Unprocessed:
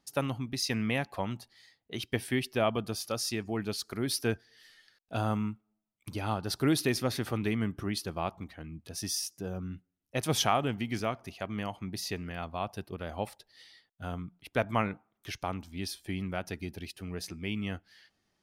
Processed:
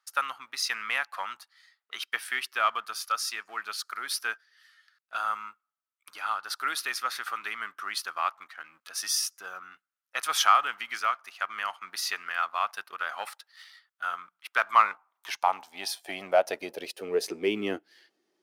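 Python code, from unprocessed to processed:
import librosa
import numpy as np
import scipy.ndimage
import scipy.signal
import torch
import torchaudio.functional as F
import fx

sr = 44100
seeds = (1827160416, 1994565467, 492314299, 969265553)

y = fx.rider(x, sr, range_db=5, speed_s=2.0)
y = fx.leveller(y, sr, passes=1)
y = fx.filter_sweep_highpass(y, sr, from_hz=1300.0, to_hz=350.0, start_s=14.52, end_s=17.75, q=4.1)
y = y * 10.0 ** (-1.5 / 20.0)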